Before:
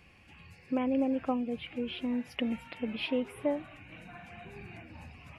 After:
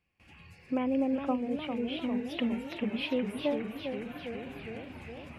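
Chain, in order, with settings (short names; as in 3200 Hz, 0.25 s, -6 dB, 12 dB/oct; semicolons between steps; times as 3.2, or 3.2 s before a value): gate with hold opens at -48 dBFS; warbling echo 0.407 s, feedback 69%, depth 197 cents, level -7 dB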